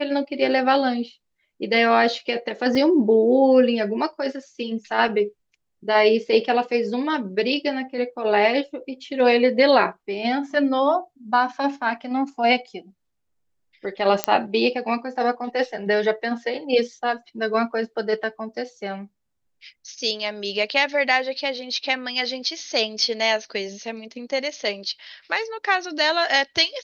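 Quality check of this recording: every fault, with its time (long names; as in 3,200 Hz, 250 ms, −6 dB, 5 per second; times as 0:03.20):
0:02.75: drop-out 2.2 ms
0:14.24: click −3 dBFS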